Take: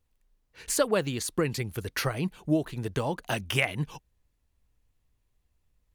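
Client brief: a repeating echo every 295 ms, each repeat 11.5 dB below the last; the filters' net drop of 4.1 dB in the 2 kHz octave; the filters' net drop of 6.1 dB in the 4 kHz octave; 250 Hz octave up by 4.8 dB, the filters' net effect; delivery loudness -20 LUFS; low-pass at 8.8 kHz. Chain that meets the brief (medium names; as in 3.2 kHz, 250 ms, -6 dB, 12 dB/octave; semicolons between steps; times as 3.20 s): low-pass 8.8 kHz; peaking EQ 250 Hz +7 dB; peaking EQ 2 kHz -3 dB; peaking EQ 4 kHz -7.5 dB; feedback delay 295 ms, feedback 27%, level -11.5 dB; trim +8 dB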